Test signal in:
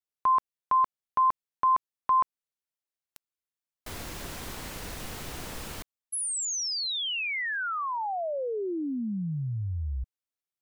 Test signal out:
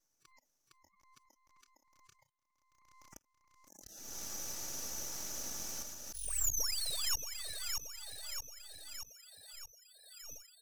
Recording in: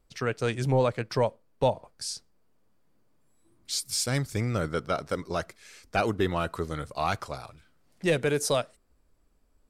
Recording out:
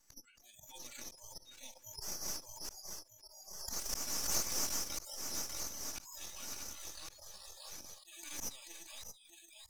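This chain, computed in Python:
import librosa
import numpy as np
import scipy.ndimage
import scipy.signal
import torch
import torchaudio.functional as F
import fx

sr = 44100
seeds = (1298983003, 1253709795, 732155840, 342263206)

p1 = fx.reverse_delay_fb(x, sr, ms=313, feedback_pct=77, wet_db=-7)
p2 = fx.bandpass_q(p1, sr, hz=6000.0, q=8.5)
p3 = fx.tilt_eq(p2, sr, slope=3.5)
p4 = p3 + 0.97 * np.pad(p3, (int(3.5 * sr / 1000.0), 0))[:len(p3)]
p5 = fx.auto_swell(p4, sr, attack_ms=392.0)
p6 = np.maximum(p5, 0.0)
p7 = fx.noise_reduce_blind(p6, sr, reduce_db=27)
p8 = 10.0 ** (-37.0 / 20.0) * np.tanh(p7 / 10.0 ** (-37.0 / 20.0))
p9 = p7 + F.gain(torch.from_numpy(p8), -6.0).numpy()
p10 = fx.pre_swell(p9, sr, db_per_s=49.0)
y = F.gain(torch.from_numpy(p10), 1.0).numpy()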